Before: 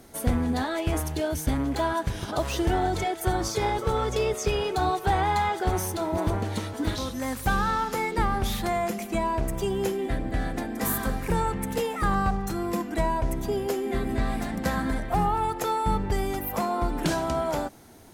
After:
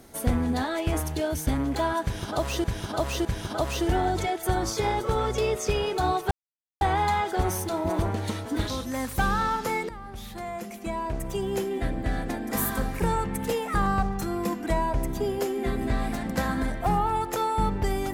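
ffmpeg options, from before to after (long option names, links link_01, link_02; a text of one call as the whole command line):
ffmpeg -i in.wav -filter_complex "[0:a]asplit=5[link_01][link_02][link_03][link_04][link_05];[link_01]atrim=end=2.642[link_06];[link_02]atrim=start=2.028:end=2.642[link_07];[link_03]atrim=start=2.028:end=5.09,asetpts=PTS-STARTPTS,afade=type=out:start_time=3.058:duration=0.004:curve=hsin,apad=pad_dur=0.5[link_08];[link_04]atrim=start=5.09:end=8.17,asetpts=PTS-STARTPTS,afade=type=in:duration=0.004:curve=hsin,afade=type=out:start_time=3.076:duration=0.004:curve=hsin:silence=0.11885[link_09];[link_05]atrim=start=8.17,asetpts=PTS-STARTPTS,afade=type=in:duration=1.98:silence=0.11885[link_10];[link_06][link_07]acrossfade=duration=0.004:curve1=hsin:curve2=hsin[link_11];[link_08][link_09][link_10]concat=n=3:v=0:a=1[link_12];[link_11][link_12]acrossfade=duration=0.004:curve1=hsin:curve2=hsin" out.wav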